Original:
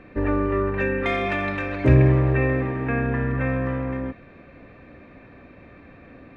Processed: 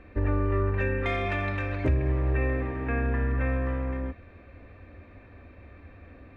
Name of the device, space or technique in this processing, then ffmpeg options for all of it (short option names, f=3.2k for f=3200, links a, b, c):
car stereo with a boomy subwoofer: -af "lowshelf=f=110:t=q:w=3:g=6.5,alimiter=limit=-11dB:level=0:latency=1:release=448,volume=-5dB"